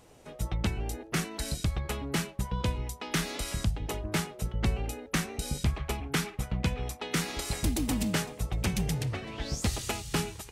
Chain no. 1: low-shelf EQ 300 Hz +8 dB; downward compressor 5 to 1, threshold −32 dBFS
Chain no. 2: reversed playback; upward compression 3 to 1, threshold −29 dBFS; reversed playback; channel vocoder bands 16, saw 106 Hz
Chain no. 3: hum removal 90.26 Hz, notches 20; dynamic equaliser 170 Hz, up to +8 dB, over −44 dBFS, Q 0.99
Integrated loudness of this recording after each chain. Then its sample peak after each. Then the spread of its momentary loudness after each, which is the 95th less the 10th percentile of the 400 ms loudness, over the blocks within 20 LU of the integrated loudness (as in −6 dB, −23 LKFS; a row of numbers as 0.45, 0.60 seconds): −37.0, −36.0, −29.0 LKFS; −19.5, −18.0, −10.5 dBFS; 3, 8, 7 LU